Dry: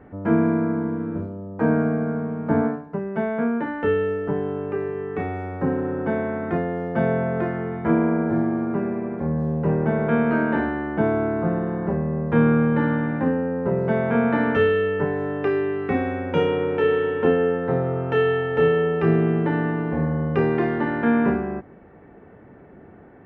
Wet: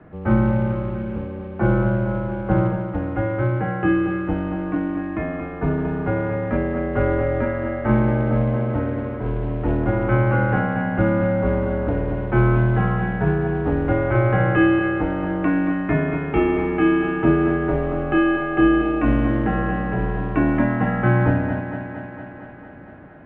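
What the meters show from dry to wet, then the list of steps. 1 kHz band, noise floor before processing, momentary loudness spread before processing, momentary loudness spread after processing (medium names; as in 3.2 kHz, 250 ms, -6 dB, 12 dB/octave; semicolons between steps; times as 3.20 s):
+2.0 dB, -47 dBFS, 7 LU, 8 LU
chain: bass shelf 75 Hz -7.5 dB; companded quantiser 6-bit; thinning echo 229 ms, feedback 74%, high-pass 180 Hz, level -8.5 dB; mistuned SSB -110 Hz 150–3000 Hz; trim +2.5 dB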